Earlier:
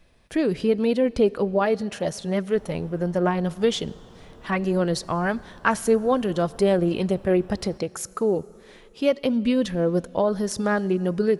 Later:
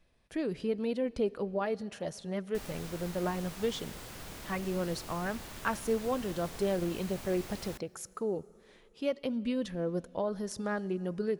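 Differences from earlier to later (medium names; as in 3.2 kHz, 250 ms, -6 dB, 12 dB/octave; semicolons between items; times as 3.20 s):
speech -11.0 dB; background: remove boxcar filter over 20 samples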